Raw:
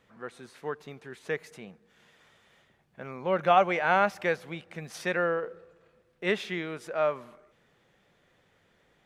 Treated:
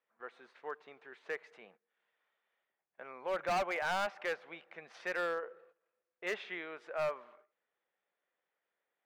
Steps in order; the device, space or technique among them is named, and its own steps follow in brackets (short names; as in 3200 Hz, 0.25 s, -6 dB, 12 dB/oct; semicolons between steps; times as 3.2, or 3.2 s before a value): walkie-talkie (BPF 530–2700 Hz; hard clip -25 dBFS, distortion -7 dB; gate -58 dBFS, range -14 dB); gain -4.5 dB